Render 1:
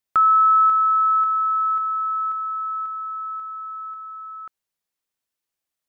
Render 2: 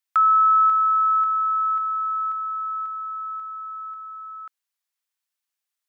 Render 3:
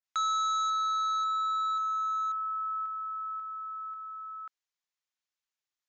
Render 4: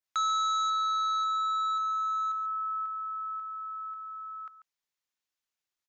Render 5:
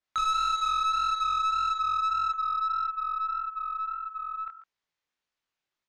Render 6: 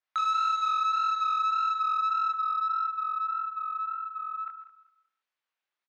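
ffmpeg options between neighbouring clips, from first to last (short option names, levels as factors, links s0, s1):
-af "highpass=990"
-af "aresample=16000,asoftclip=type=hard:threshold=0.0708,aresample=44100,adynamicequalizer=threshold=0.02:dfrequency=1600:dqfactor=0.7:tfrequency=1600:tqfactor=0.7:attack=5:release=100:ratio=0.375:range=1.5:mode=cutabove:tftype=highshelf,volume=0.596"
-af "aecho=1:1:141:0.211,volume=1.12"
-af "flanger=delay=18:depth=6.6:speed=1.7,aeval=exprs='0.0668*(cos(1*acos(clip(val(0)/0.0668,-1,1)))-cos(1*PI/2))+0.0106*(cos(2*acos(clip(val(0)/0.0668,-1,1)))-cos(2*PI/2))+0.00944*(cos(5*acos(clip(val(0)/0.0668,-1,1)))-cos(5*PI/2))+0.00266*(cos(8*acos(clip(val(0)/0.0668,-1,1)))-cos(8*PI/2))':c=same,adynamicsmooth=sensitivity=1:basefreq=5000,volume=1.68"
-af "bandpass=f=1500:t=q:w=0.52:csg=0,aecho=1:1:194|388|582:0.168|0.0453|0.0122"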